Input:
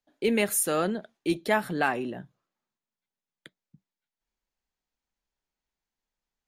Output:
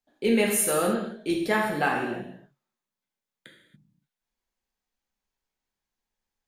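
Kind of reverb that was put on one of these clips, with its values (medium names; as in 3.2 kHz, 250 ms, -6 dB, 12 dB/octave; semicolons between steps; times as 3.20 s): gated-style reverb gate 310 ms falling, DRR -1 dB; trim -1.5 dB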